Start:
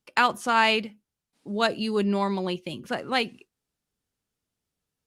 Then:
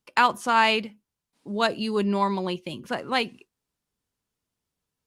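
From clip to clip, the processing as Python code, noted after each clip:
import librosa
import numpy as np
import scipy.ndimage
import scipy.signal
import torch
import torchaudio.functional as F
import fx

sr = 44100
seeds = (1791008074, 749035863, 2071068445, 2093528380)

y = fx.peak_eq(x, sr, hz=1000.0, db=5.5, octaves=0.23)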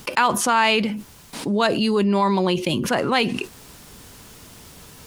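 y = fx.env_flatten(x, sr, amount_pct=70)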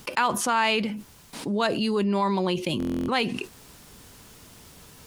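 y = fx.buffer_glitch(x, sr, at_s=(2.78,), block=1024, repeats=12)
y = y * 10.0 ** (-5.0 / 20.0)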